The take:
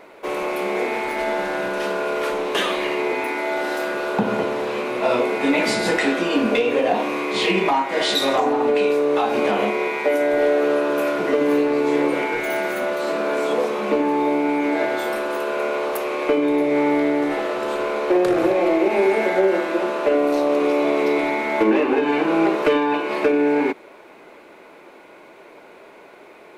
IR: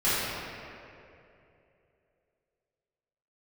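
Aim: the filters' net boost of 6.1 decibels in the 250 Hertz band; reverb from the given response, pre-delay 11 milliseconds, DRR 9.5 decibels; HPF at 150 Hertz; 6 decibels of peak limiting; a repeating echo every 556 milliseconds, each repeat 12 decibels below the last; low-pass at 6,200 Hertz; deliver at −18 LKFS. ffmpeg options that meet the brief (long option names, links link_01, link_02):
-filter_complex "[0:a]highpass=150,lowpass=6200,equalizer=frequency=250:width_type=o:gain=8.5,alimiter=limit=-9dB:level=0:latency=1,aecho=1:1:556|1112|1668:0.251|0.0628|0.0157,asplit=2[link_01][link_02];[1:a]atrim=start_sample=2205,adelay=11[link_03];[link_02][link_03]afir=irnorm=-1:irlink=0,volume=-24.5dB[link_04];[link_01][link_04]amix=inputs=2:normalize=0"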